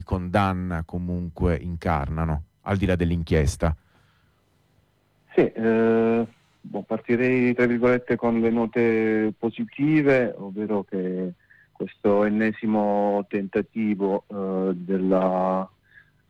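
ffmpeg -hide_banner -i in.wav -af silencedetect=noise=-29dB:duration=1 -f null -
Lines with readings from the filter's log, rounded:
silence_start: 3.74
silence_end: 5.37 | silence_duration: 1.64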